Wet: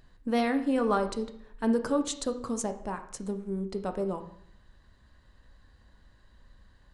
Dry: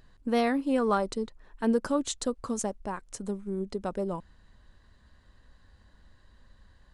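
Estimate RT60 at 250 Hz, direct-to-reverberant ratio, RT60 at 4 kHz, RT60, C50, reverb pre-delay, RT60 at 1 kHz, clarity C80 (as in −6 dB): 0.70 s, 7.0 dB, 0.55 s, 0.65 s, 11.0 dB, 11 ms, 0.60 s, 14.5 dB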